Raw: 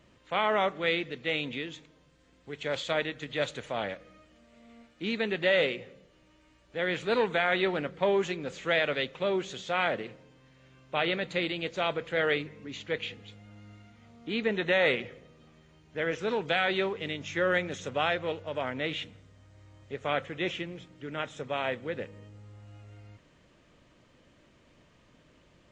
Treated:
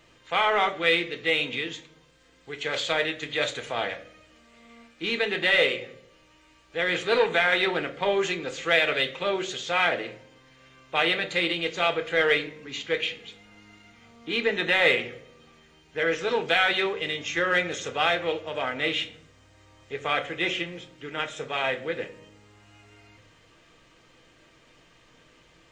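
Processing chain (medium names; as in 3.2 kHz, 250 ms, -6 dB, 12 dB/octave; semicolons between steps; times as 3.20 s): tilt shelf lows -4.5 dB, about 650 Hz; in parallel at -9.5 dB: saturation -24 dBFS, distortion -9 dB; on the sum: reverberation RT60 0.45 s, pre-delay 4 ms, DRR 6 dB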